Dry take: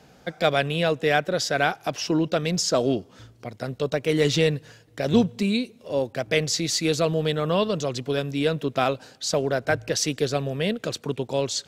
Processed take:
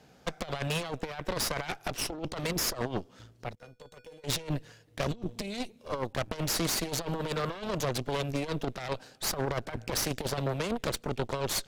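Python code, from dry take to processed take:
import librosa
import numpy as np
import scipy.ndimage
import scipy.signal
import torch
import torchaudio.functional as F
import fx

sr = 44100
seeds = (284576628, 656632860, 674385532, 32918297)

y = fx.over_compress(x, sr, threshold_db=-25.0, ratio=-0.5)
y = fx.cheby_harmonics(y, sr, harmonics=(8,), levels_db=(-11,), full_scale_db=-10.0)
y = fx.comb_fb(y, sr, f0_hz=490.0, decay_s=0.27, harmonics='odd', damping=0.0, mix_pct=90, at=(3.55, 4.24))
y = y * librosa.db_to_amplitude(-8.5)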